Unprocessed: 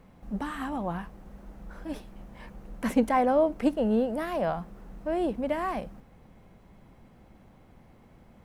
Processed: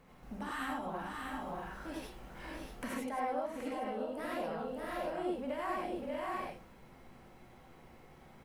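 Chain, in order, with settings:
on a send: multi-tap delay 593/639 ms −9.5/−8.5 dB
on the sum: downward compressor 12 to 1, threshold −33 dBFS, peak gain reduction 16.5 dB
low-shelf EQ 490 Hz −7.5 dB
reverb whose tail is shaped and stops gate 120 ms rising, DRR −3.5 dB
level −2 dB

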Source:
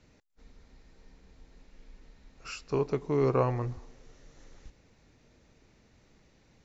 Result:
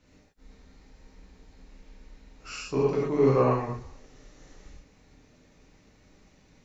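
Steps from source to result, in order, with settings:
reverb whose tail is shaped and stops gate 150 ms flat, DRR −6 dB
level −3 dB

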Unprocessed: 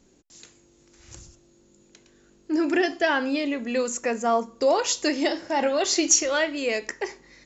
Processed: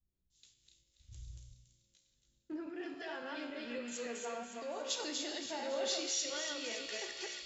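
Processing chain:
delay that plays each chunk backwards 140 ms, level −1.5 dB
brickwall limiter −16 dBFS, peak gain reduction 11 dB
0:02.69–0:04.90: flanger 1.7 Hz, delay 5.2 ms, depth 1.9 ms, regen +45%
delay with a high-pass on its return 282 ms, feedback 75%, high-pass 1,700 Hz, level −5.5 dB
downward compressor 6 to 1, threshold −29 dBFS, peak gain reduction 9 dB
parametric band 3,500 Hz +9.5 dB 0.58 octaves
tuned comb filter 60 Hz, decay 1.7 s, harmonics all, mix 80%
multiband upward and downward expander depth 100%
level +1 dB

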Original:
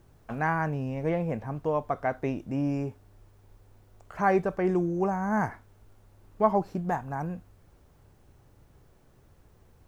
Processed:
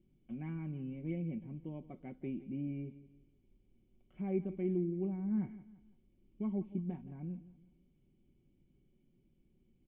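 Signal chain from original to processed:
formant resonators in series i
comb filter 5.4 ms, depth 66%
on a send: repeating echo 170 ms, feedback 39%, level −16.5 dB
on the sum: level −2 dB

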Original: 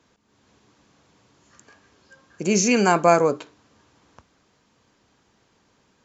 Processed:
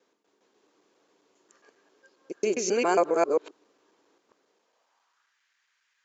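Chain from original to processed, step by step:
reversed piece by piece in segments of 135 ms
high-pass filter sweep 380 Hz → 1,800 Hz, 0:04.49–0:05.40
level −9 dB

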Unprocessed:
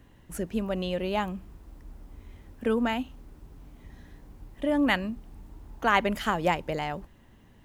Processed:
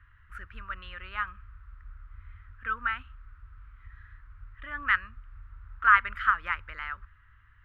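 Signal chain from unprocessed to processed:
drawn EQ curve 100 Hz 0 dB, 150 Hz −28 dB, 770 Hz −26 dB, 1,300 Hz +12 dB, 6,700 Hz −28 dB

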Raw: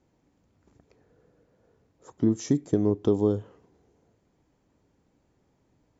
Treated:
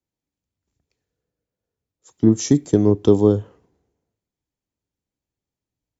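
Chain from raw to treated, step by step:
multiband upward and downward expander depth 70%
level +6 dB

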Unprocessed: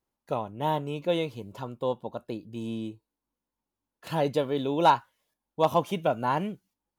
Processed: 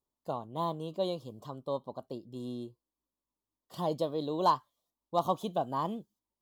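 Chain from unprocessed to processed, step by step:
flat-topped bell 1,800 Hz −13 dB 1.1 octaves
wrong playback speed 44.1 kHz file played as 48 kHz
level −5.5 dB

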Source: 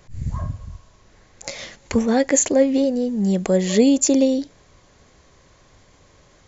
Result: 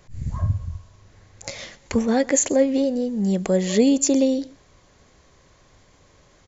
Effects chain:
0:00.42–0:01.60: parametric band 97 Hz +11 dB 0.81 octaves
single-tap delay 128 ms −22.5 dB
level −2 dB

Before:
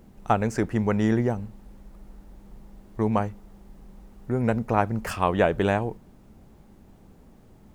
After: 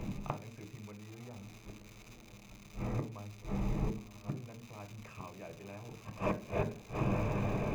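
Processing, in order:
bass and treble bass +6 dB, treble −10 dB
reversed playback
downward compressor 10 to 1, threshold −30 dBFS, peak gain reduction 16 dB
reversed playback
notch filter 1,400 Hz, Q 19
feedback delay with all-pass diffusion 1,008 ms, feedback 50%, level −8.5 dB
gate with flip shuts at −31 dBFS, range −26 dB
surface crackle 290 per second −54 dBFS
convolution reverb RT60 0.40 s, pre-delay 3 ms, DRR 9.5 dB
level +7 dB

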